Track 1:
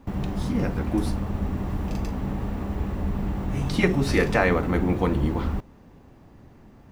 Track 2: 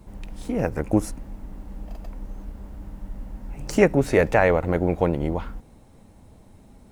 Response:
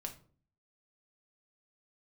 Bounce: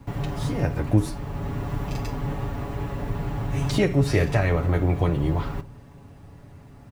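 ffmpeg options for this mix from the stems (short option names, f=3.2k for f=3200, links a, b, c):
-filter_complex "[0:a]lowshelf=f=290:g=-11.5,aecho=1:1:7.1:1,volume=-3dB,asplit=2[a][b];[b]volume=-4dB[c];[1:a]adelay=0.4,volume=-5.5dB,asplit=2[d][e];[e]apad=whole_len=305152[f];[a][f]sidechaincompress=threshold=-28dB:ratio=8:attack=9:release=725[g];[2:a]atrim=start_sample=2205[h];[c][h]afir=irnorm=-1:irlink=0[i];[g][d][i]amix=inputs=3:normalize=0,equalizer=f=100:w=1.1:g=13,acrossover=split=390|3000[j][k][l];[k]acompressor=threshold=-24dB:ratio=6[m];[j][m][l]amix=inputs=3:normalize=0"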